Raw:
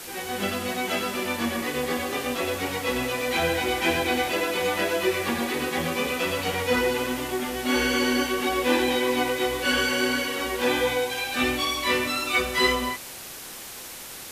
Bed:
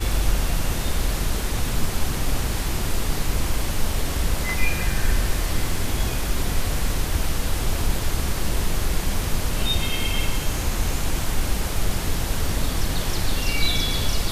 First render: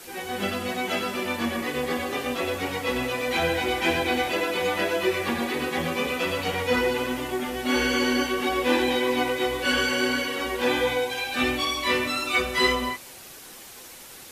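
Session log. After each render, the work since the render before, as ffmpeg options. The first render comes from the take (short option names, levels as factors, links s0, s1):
-af "afftdn=nr=6:nf=-40"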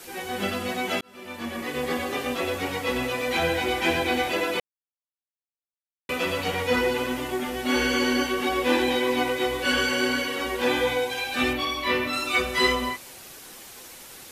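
-filter_complex "[0:a]asettb=1/sr,asplit=3[s0][s1][s2];[s0]atrim=end=11.534[s3];[s1]atrim=start=11.53:end=12.13,asetpts=PTS-STARTPTS,afade=t=in:d=0.004:c=qsin,afade=t=out:st=0.596:d=0.004:c=qsin,equalizer=f=7900:t=o:w=1.2:g=-10[s4];[s2]atrim=start=12.126[s5];[s3][s4]acrossfade=d=0.004:c1=hsin:c2=qsin[s6];[s6][s5]acrossfade=d=0.004:c1=qsin:c2=hsin,asplit=4[s7][s8][s9][s10];[s7]atrim=end=1.01,asetpts=PTS-STARTPTS,afade=t=out:st=1.006:d=0.004:c=hsin[s11];[s8]atrim=start=1.01:end=4.6,asetpts=PTS-STARTPTS,afade=t=in:d=0.88,afade=t=out:st=3.586:d=0.004:c=hsin[s12];[s9]atrim=start=4.6:end=6.09,asetpts=PTS-STARTPTS,volume=0[s13];[s10]atrim=start=6.09,asetpts=PTS-STARTPTS,afade=t=in:d=0.004:c=hsin[s14];[s11][s12][s13][s14]concat=n=4:v=0:a=1"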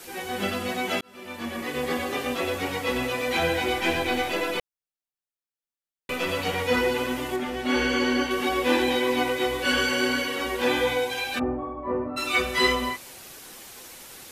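-filter_complex "[0:a]asettb=1/sr,asplit=3[s0][s1][s2];[s0]atrim=end=3.784[s3];[s1]atrim=start=3.78:end=6.29,asetpts=PTS-STARTPTS,afade=t=in:d=0.004:c=qsin,afade=t=out:st=2.506:d=0.004:c=qsin,aeval=exprs='if(lt(val(0),0),0.708*val(0),val(0))':c=same[s4];[s2]atrim=start=6.286[s5];[s3][s4]acrossfade=d=0.004:c1=hsin:c2=qsin[s6];[s6][s5]acrossfade=d=0.004:c1=qsin:c2=hsin,asettb=1/sr,asplit=3[s7][s8][s9];[s7]atrim=end=7.364[s10];[s8]atrim=start=7.36:end=8.31,asetpts=PTS-STARTPTS,afade=t=in:d=0.004:c=qsin,afade=t=out:st=0.946:d=0.004:c=qsin,highshelf=f=7600:g=-12[s11];[s9]atrim=start=8.306[s12];[s10][s11]acrossfade=d=0.004:c1=hsin:c2=qsin[s13];[s13][s12]acrossfade=d=0.004:c1=qsin:c2=hsin,asplit=3[s14][s15][s16];[s14]afade=t=out:st=11.38:d=0.02[s17];[s15]lowpass=f=1000:w=0.5412,lowpass=f=1000:w=1.3066,afade=t=in:st=11.38:d=0.02,afade=t=out:st=12.16:d=0.02[s18];[s16]afade=t=in:st=12.16:d=0.02[s19];[s17][s18][s19]amix=inputs=3:normalize=0"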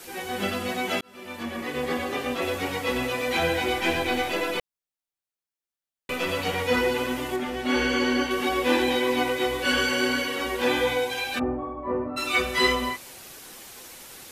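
-filter_complex "[0:a]asettb=1/sr,asplit=3[s0][s1][s2];[s0]atrim=end=1.434[s3];[s1]atrim=start=1.43:end=2.42,asetpts=PTS-STARTPTS,afade=t=in:d=0.004:c=qsin,afade=t=out:st=0.986:d=0.004:c=qsin,highshelf=f=4900:g=-4.5[s4];[s2]atrim=start=2.416[s5];[s3][s4]acrossfade=d=0.004:c1=hsin:c2=qsin[s6];[s6][s5]acrossfade=d=0.004:c1=qsin:c2=hsin"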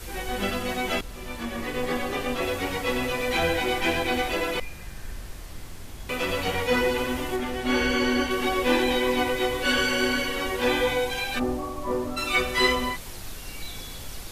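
-filter_complex "[1:a]volume=0.15[s0];[0:a][s0]amix=inputs=2:normalize=0"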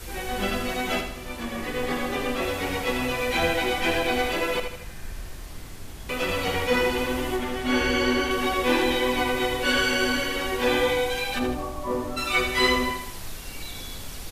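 -af "aecho=1:1:79|158|237|316|395:0.422|0.194|0.0892|0.041|0.0189"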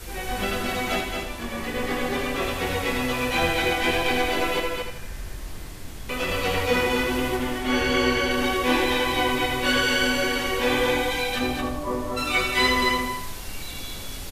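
-filter_complex "[0:a]asplit=2[s0][s1];[s1]adelay=23,volume=0.282[s2];[s0][s2]amix=inputs=2:normalize=0,aecho=1:1:223:0.631"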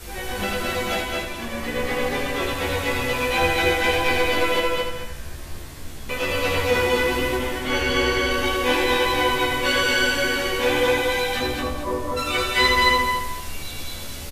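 -filter_complex "[0:a]asplit=2[s0][s1];[s1]adelay=14,volume=0.562[s2];[s0][s2]amix=inputs=2:normalize=0,asplit=2[s3][s4];[s4]aecho=0:1:211:0.355[s5];[s3][s5]amix=inputs=2:normalize=0"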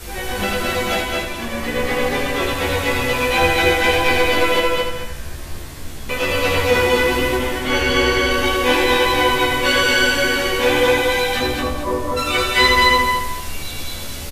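-af "volume=1.68,alimiter=limit=0.794:level=0:latency=1"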